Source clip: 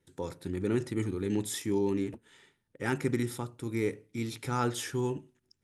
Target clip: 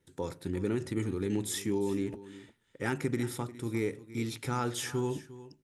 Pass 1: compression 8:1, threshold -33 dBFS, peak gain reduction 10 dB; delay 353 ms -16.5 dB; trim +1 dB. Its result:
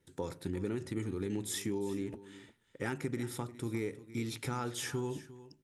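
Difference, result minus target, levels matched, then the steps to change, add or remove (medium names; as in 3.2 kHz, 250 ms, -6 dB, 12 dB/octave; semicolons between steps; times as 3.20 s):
compression: peak gain reduction +5 dB
change: compression 8:1, threshold -27 dBFS, peak gain reduction 5 dB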